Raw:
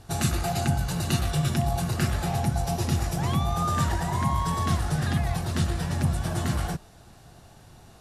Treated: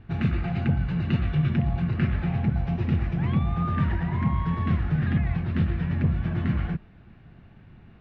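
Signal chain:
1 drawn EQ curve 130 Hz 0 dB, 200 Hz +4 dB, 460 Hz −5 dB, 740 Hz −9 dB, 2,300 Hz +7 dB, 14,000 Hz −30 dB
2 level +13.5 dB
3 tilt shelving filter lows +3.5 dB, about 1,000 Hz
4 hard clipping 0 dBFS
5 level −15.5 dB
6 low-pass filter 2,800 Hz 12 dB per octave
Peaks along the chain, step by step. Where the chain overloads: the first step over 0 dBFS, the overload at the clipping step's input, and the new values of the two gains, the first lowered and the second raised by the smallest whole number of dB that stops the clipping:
−11.5, +2.0, +5.0, 0.0, −15.5, −15.5 dBFS
step 2, 5.0 dB
step 2 +8.5 dB, step 5 −10.5 dB

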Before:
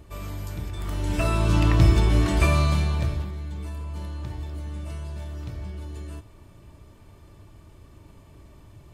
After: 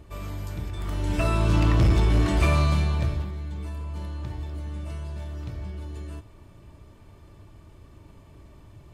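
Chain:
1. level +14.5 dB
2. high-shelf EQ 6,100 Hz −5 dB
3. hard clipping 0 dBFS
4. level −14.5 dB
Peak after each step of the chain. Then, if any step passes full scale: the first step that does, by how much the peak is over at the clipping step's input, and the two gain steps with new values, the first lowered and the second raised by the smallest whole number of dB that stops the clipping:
+7.5, +7.5, 0.0, −14.5 dBFS
step 1, 7.5 dB
step 1 +6.5 dB, step 4 −6.5 dB

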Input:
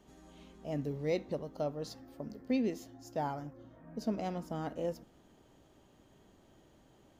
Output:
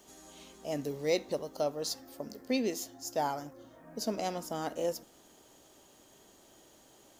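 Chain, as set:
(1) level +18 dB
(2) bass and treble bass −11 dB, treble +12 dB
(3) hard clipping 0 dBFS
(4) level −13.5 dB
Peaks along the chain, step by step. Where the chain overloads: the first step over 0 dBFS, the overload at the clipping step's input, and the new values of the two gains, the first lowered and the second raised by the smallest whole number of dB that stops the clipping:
−3.0, −3.5, −3.5, −17.0 dBFS
no step passes full scale

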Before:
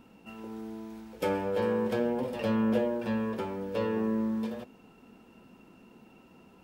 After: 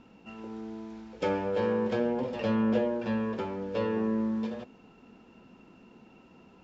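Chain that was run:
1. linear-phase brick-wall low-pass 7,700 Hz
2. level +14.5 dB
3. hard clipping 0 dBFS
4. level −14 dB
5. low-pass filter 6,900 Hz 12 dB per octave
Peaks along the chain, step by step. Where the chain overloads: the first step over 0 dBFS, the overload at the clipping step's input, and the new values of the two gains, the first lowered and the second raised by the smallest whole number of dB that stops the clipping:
−16.5, −2.0, −2.0, −16.0, −16.0 dBFS
no step passes full scale

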